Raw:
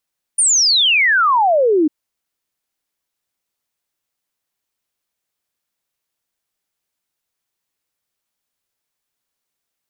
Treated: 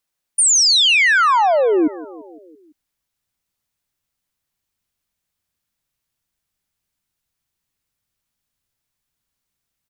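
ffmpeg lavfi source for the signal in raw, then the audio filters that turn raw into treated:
-f lavfi -i "aevalsrc='0.299*clip(min(t,1.5-t)/0.01,0,1)*sin(2*PI*9600*1.5/log(290/9600)*(exp(log(290/9600)*t/1.5)-1))':duration=1.5:sample_rate=44100"
-af "asubboost=boost=3.5:cutoff=210,aecho=1:1:169|338|507|676|845:0.126|0.0755|0.0453|0.0272|0.0163"

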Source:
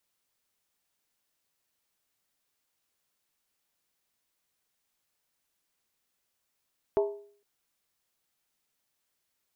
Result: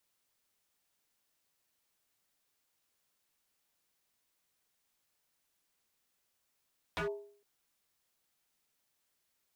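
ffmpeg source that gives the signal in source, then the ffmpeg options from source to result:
-f lavfi -i "aevalsrc='0.1*pow(10,-3*t/0.52)*sin(2*PI*408*t)+0.0473*pow(10,-3*t/0.412)*sin(2*PI*650.4*t)+0.0224*pow(10,-3*t/0.356)*sin(2*PI*871.5*t)+0.0106*pow(10,-3*t/0.343)*sin(2*PI*936.8*t)+0.00501*pow(10,-3*t/0.319)*sin(2*PI*1082.4*t)':duration=0.46:sample_rate=44100"
-af "aeval=exprs='0.0282*(abs(mod(val(0)/0.0282+3,4)-2)-1)':channel_layout=same"

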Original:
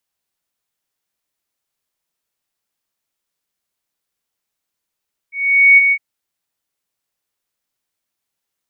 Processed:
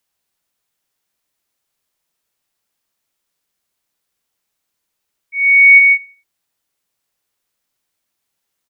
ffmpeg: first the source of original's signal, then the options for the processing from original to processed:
-f lavfi -i "aevalsrc='0.668*sin(2*PI*2230*t)':duration=0.66:sample_rate=44100,afade=type=in:duration=0.455,afade=type=out:start_time=0.455:duration=0.024:silence=0.473,afade=type=out:start_time=0.6:duration=0.06"
-filter_complex "[0:a]asplit=2[link_01][link_02];[link_02]alimiter=limit=-12.5dB:level=0:latency=1,volume=-3dB[link_03];[link_01][link_03]amix=inputs=2:normalize=0,asplit=2[link_04][link_05];[link_05]adelay=87,lowpass=frequency=2000:poles=1,volume=-23dB,asplit=2[link_06][link_07];[link_07]adelay=87,lowpass=frequency=2000:poles=1,volume=0.5,asplit=2[link_08][link_09];[link_09]adelay=87,lowpass=frequency=2000:poles=1,volume=0.5[link_10];[link_04][link_06][link_08][link_10]amix=inputs=4:normalize=0"

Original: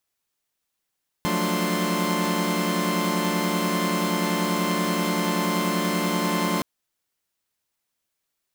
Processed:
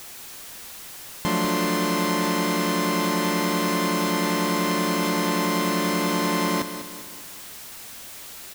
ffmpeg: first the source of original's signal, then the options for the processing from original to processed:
-f lavfi -i "aevalsrc='0.0501*((2*mod(174.61*t,1)-1)+(2*mod(185*t,1)-1)+(2*mod(220*t,1)-1)+(2*mod(293.66*t,1)-1)+(2*mod(1046.5*t,1)-1))':duration=5.37:sample_rate=44100"
-filter_complex "[0:a]aeval=exprs='val(0)+0.5*0.02*sgn(val(0))':channel_layout=same,asplit=2[link_01][link_02];[link_02]aecho=0:1:198|396|594|792|990:0.299|0.134|0.0605|0.0272|0.0122[link_03];[link_01][link_03]amix=inputs=2:normalize=0"

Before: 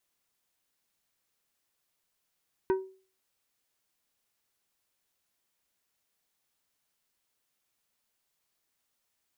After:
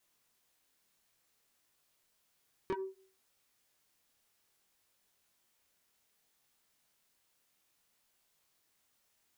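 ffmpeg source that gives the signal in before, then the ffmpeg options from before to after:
-f lavfi -i "aevalsrc='0.0944*pow(10,-3*t/0.4)*sin(2*PI*380*t)+0.0376*pow(10,-3*t/0.211)*sin(2*PI*950*t)+0.015*pow(10,-3*t/0.152)*sin(2*PI*1520*t)+0.00596*pow(10,-3*t/0.13)*sin(2*PI*1900*t)+0.00237*pow(10,-3*t/0.108)*sin(2*PI*2470*t)':duration=0.89:sample_rate=44100"
-filter_complex "[0:a]asplit=2[link_01][link_02];[link_02]acompressor=threshold=-37dB:ratio=6,volume=2dB[link_03];[link_01][link_03]amix=inputs=2:normalize=0,flanger=delay=20:depth=7:speed=0.61,asoftclip=type=tanh:threshold=-31dB"

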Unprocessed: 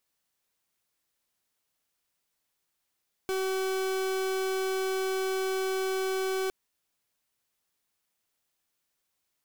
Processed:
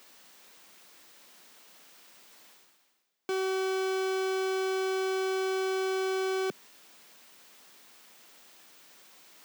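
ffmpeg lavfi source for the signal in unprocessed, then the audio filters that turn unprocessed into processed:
-f lavfi -i "aevalsrc='0.0335*(2*lt(mod(380*t,1),0.41)-1)':duration=3.21:sample_rate=44100"
-af "highpass=frequency=180:width=0.5412,highpass=frequency=180:width=1.3066,equalizer=frequency=12000:width_type=o:width=1:gain=-8.5,areverse,acompressor=mode=upward:threshold=-34dB:ratio=2.5,areverse"

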